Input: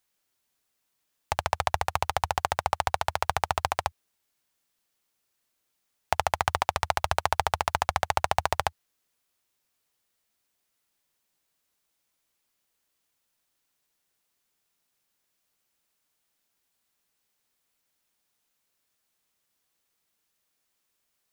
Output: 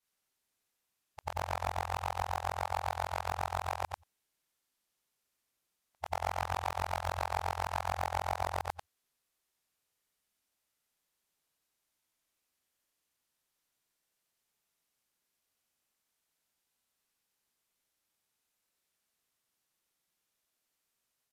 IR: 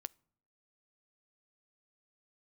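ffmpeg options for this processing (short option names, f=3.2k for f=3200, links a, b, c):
-af "afftfilt=real='re':imag='-im':win_size=8192:overlap=0.75,aresample=32000,aresample=44100,asoftclip=type=tanh:threshold=-22dB"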